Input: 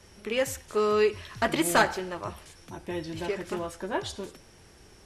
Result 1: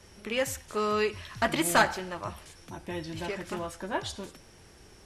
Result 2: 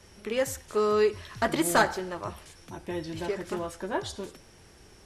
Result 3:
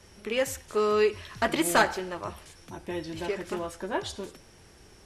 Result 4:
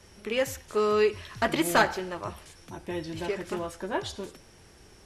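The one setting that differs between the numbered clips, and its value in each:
dynamic bell, frequency: 410 Hz, 2.6 kHz, 130 Hz, 8.6 kHz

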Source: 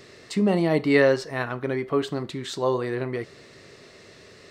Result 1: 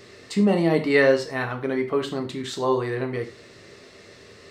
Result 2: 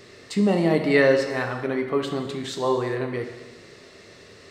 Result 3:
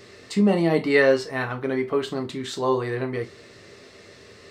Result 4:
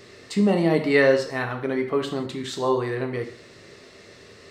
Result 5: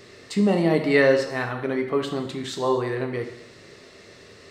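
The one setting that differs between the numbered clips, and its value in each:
gated-style reverb, gate: 130 ms, 450 ms, 80 ms, 200 ms, 300 ms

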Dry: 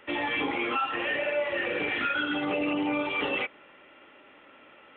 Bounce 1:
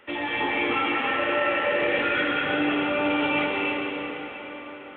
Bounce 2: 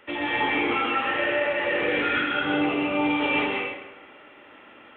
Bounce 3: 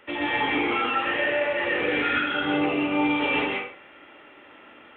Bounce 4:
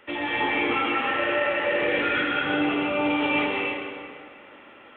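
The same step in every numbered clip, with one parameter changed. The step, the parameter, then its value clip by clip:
plate-style reverb, RT60: 5 s, 1.1 s, 0.51 s, 2.3 s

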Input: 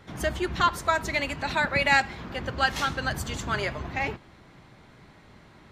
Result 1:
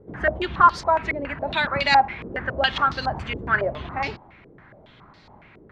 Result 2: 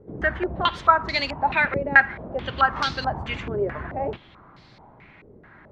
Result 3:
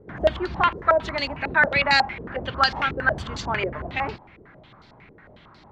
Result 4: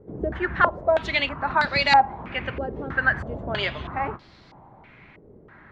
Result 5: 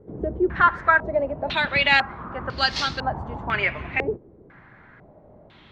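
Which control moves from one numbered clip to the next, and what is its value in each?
step-sequenced low-pass, rate: 7.2 Hz, 4.6 Hz, 11 Hz, 3.1 Hz, 2 Hz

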